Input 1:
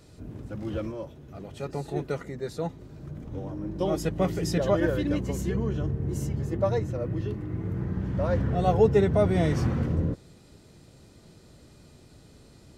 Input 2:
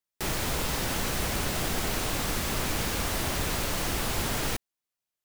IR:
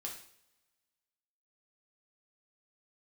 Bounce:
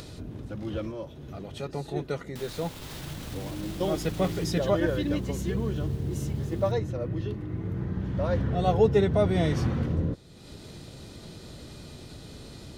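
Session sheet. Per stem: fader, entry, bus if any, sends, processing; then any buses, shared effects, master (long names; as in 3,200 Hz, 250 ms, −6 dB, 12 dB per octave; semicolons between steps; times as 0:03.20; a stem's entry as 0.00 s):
−1.0 dB, 0.00 s, no send, notch filter 7,600 Hz, Q 17
0:04.33 −4.5 dB → 0:04.79 −15 dB, 2.15 s, no send, brickwall limiter −31.5 dBFS, peak gain reduction 14.5 dB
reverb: not used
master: parametric band 3,600 Hz +5.5 dB 0.65 octaves; upward compression, threshold −33 dBFS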